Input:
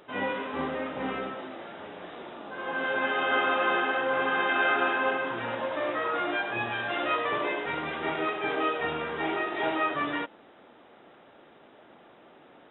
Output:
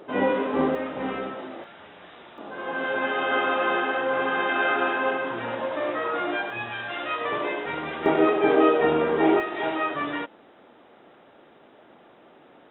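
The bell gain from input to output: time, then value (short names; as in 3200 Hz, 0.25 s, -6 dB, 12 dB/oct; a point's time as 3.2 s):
bell 360 Hz 2.8 oct
+11 dB
from 0.75 s +3.5 dB
from 1.64 s -7.5 dB
from 2.38 s +3.5 dB
from 6.5 s -4 dB
from 7.21 s +2.5 dB
from 8.06 s +13.5 dB
from 9.4 s +2 dB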